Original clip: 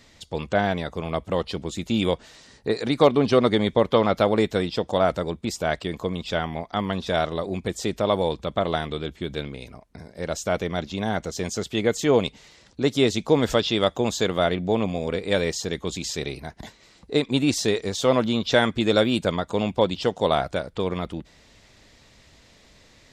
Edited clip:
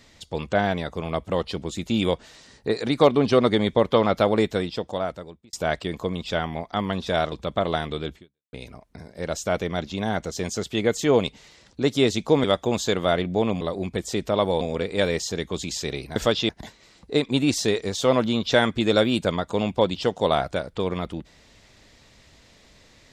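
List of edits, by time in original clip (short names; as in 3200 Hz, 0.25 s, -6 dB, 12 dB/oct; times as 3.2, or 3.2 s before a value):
4.42–5.53 fade out
7.32–8.32 move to 14.94
9.16–9.53 fade out exponential
13.44–13.77 move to 16.49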